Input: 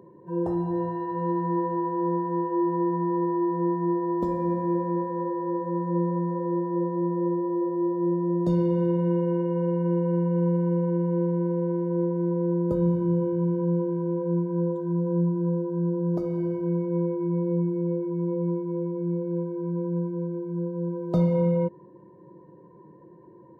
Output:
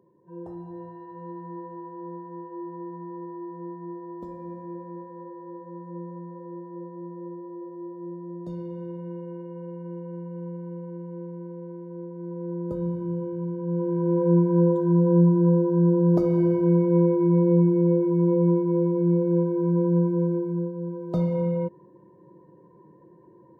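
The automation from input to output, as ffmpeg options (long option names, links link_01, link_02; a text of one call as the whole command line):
ffmpeg -i in.wav -af "volume=6.5dB,afade=type=in:start_time=12.11:duration=0.56:silence=0.473151,afade=type=in:start_time=13.64:duration=0.64:silence=0.251189,afade=type=out:start_time=20.32:duration=0.43:silence=0.354813" out.wav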